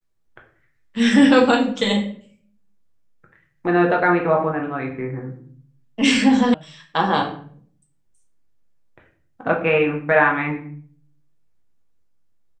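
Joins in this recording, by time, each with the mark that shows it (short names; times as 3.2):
6.54 sound cut off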